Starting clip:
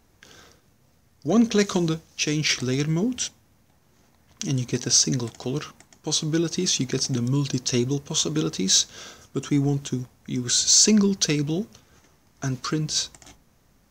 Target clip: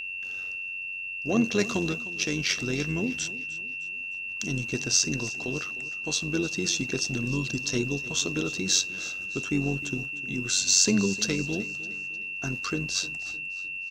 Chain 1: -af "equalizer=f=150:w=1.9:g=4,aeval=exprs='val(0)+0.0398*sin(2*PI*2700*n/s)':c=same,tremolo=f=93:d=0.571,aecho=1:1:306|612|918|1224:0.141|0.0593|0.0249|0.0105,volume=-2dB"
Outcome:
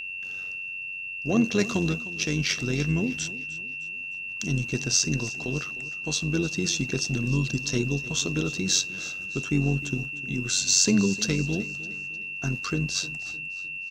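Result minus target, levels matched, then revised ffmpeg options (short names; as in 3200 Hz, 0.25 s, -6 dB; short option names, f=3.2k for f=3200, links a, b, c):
125 Hz band +5.0 dB
-af "equalizer=f=150:w=1.9:g=-3,aeval=exprs='val(0)+0.0398*sin(2*PI*2700*n/s)':c=same,tremolo=f=93:d=0.571,aecho=1:1:306|612|918|1224:0.141|0.0593|0.0249|0.0105,volume=-2dB"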